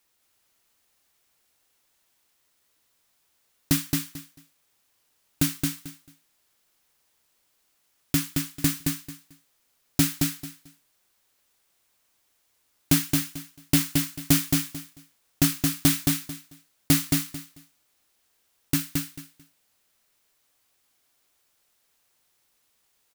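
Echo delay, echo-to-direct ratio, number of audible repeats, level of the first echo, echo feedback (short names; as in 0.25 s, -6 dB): 0.221 s, -3.5 dB, 3, -3.5 dB, 20%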